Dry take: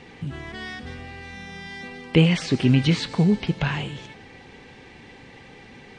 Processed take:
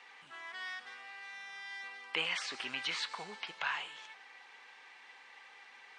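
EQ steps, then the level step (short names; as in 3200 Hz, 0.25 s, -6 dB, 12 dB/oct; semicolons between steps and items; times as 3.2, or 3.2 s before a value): resonant high-pass 1100 Hz, resonance Q 1.7; -8.5 dB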